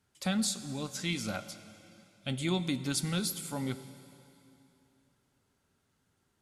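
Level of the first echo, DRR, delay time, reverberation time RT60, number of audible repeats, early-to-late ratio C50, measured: none, 12.0 dB, none, 3.0 s, none, 13.0 dB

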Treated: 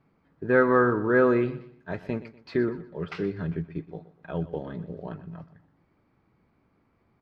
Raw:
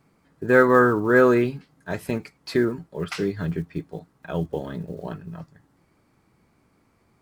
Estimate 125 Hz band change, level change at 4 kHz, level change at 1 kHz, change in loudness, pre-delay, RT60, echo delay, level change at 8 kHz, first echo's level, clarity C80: -3.5 dB, -10.0 dB, -4.5 dB, -4.0 dB, none, none, 0.122 s, under -20 dB, -16.0 dB, none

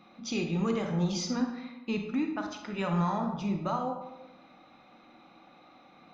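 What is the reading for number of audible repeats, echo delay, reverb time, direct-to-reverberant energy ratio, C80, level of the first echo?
none, none, 1.0 s, 3.0 dB, 8.0 dB, none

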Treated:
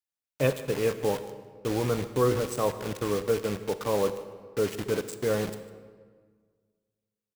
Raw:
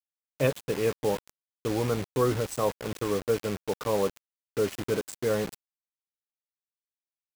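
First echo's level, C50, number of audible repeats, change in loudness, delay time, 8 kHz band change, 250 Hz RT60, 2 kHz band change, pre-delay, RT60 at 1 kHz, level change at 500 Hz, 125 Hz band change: -19.0 dB, 11.5 dB, 1, +0.5 dB, 0.152 s, 0.0 dB, 1.9 s, +0.5 dB, 24 ms, 1.6 s, +0.5 dB, +0.5 dB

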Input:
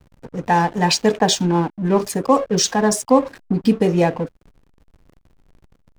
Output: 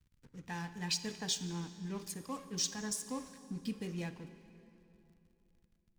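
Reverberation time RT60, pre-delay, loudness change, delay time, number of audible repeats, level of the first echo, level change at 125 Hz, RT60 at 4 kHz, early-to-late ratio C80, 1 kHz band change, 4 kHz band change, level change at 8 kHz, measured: 3.0 s, 38 ms, -20.5 dB, none, none, none, -20.5 dB, 2.3 s, 12.5 dB, -28.5 dB, -15.5 dB, -14.5 dB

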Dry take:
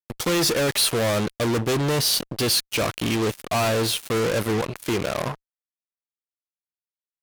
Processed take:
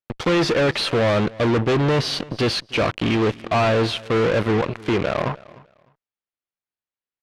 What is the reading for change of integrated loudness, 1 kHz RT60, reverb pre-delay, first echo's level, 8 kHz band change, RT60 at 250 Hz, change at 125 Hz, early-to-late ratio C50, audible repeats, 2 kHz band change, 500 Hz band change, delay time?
+2.0 dB, none, none, -21.5 dB, -12.0 dB, none, +4.0 dB, none, 2, +3.0 dB, +4.0 dB, 0.303 s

